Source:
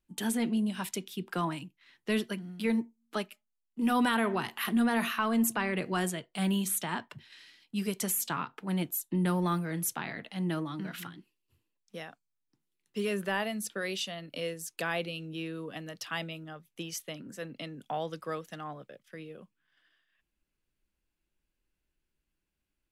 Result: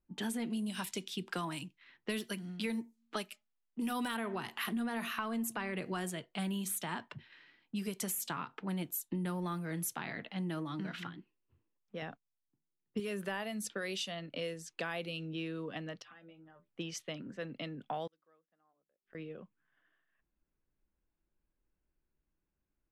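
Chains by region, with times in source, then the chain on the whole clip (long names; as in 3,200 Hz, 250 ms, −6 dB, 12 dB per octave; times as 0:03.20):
0:00.50–0:04.17: de-essing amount 85% + high-shelf EQ 3,100 Hz +10 dB
0:12.02–0:13.00: low-shelf EQ 440 Hz +9 dB + noise gate −59 dBFS, range −13 dB
0:16.02–0:16.69: parametric band 260 Hz −7 dB 0.27 octaves + downward compressor 10 to 1, threshold −44 dBFS + stiff-string resonator 60 Hz, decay 0.27 s, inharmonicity 0.008
0:18.07–0:19.15: parametric band 120 Hz −14 dB 0.91 octaves + mains-hum notches 50/100/150/200/250/300/350/400 Hz + gate with flip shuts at −43 dBFS, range −33 dB
whole clip: low-pass that shuts in the quiet parts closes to 1,400 Hz, open at −30 dBFS; downward compressor 4 to 1, threshold −35 dBFS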